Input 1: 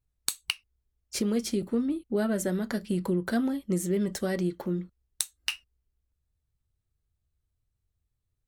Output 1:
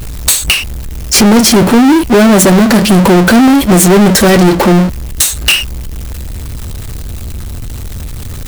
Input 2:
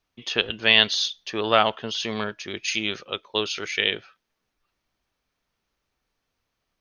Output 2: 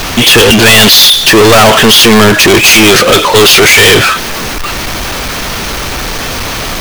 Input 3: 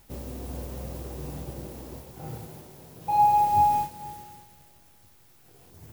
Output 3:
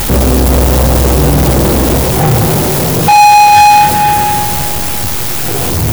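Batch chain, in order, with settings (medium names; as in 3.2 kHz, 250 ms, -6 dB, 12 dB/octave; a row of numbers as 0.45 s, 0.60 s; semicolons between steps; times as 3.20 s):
power-law waveshaper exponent 0.35; saturation -15 dBFS; peak normalisation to -1.5 dBFS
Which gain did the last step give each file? +14.0 dB, +13.5 dB, +14.5 dB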